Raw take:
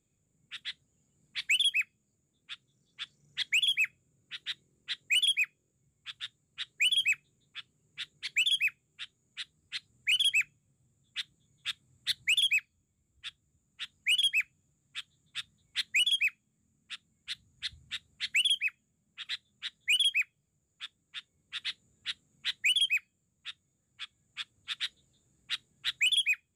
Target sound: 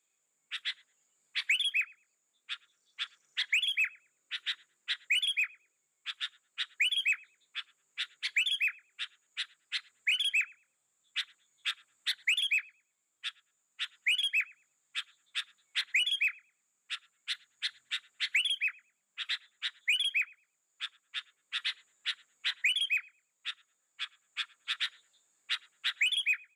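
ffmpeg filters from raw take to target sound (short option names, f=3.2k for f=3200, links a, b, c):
-filter_complex "[0:a]highpass=710,equalizer=f=1.4k:t=o:w=2:g=6,acrossover=split=1900[a][b];[a]flanger=delay=18:depth=7.2:speed=0.15[c];[b]acompressor=threshold=-33dB:ratio=6[d];[c][d]amix=inputs=2:normalize=0,asplit=2[e][f];[f]adelay=110,lowpass=f=1k:p=1,volume=-18dB,asplit=2[g][h];[h]adelay=110,lowpass=f=1k:p=1,volume=0.41,asplit=2[i][j];[j]adelay=110,lowpass=f=1k:p=1,volume=0.41[k];[e][g][i][k]amix=inputs=4:normalize=0,volume=2.5dB"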